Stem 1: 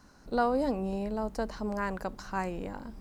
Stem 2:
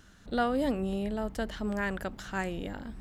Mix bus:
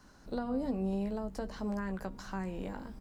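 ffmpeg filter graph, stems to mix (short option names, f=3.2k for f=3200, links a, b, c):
-filter_complex "[0:a]bandreject=f=236.9:t=h:w=4,bandreject=f=473.8:t=h:w=4,bandreject=f=710.7:t=h:w=4,bandreject=f=947.6:t=h:w=4,bandreject=f=1.1845k:t=h:w=4,bandreject=f=1.4214k:t=h:w=4,bandreject=f=1.6583k:t=h:w=4,bandreject=f=1.8952k:t=h:w=4,bandreject=f=2.1321k:t=h:w=4,bandreject=f=2.369k:t=h:w=4,bandreject=f=2.6059k:t=h:w=4,bandreject=f=2.8428k:t=h:w=4,bandreject=f=3.0797k:t=h:w=4,bandreject=f=3.3166k:t=h:w=4,bandreject=f=3.5535k:t=h:w=4,bandreject=f=3.7904k:t=h:w=4,bandreject=f=4.0273k:t=h:w=4,bandreject=f=4.2642k:t=h:w=4,bandreject=f=4.5011k:t=h:w=4,bandreject=f=4.738k:t=h:w=4,bandreject=f=4.9749k:t=h:w=4,bandreject=f=5.2118k:t=h:w=4,bandreject=f=5.4487k:t=h:w=4,bandreject=f=5.6856k:t=h:w=4,bandreject=f=5.9225k:t=h:w=4,bandreject=f=6.1594k:t=h:w=4,bandreject=f=6.3963k:t=h:w=4,bandreject=f=6.6332k:t=h:w=4,bandreject=f=6.8701k:t=h:w=4,bandreject=f=7.107k:t=h:w=4,bandreject=f=7.3439k:t=h:w=4,bandreject=f=7.5808k:t=h:w=4,bandreject=f=7.8177k:t=h:w=4,bandreject=f=8.0546k:t=h:w=4,bandreject=f=8.2915k:t=h:w=4,volume=-1.5dB[a];[1:a]adelay=15,volume=-11.5dB[b];[a][b]amix=inputs=2:normalize=0,acrossover=split=340[c][d];[d]acompressor=threshold=-39dB:ratio=10[e];[c][e]amix=inputs=2:normalize=0"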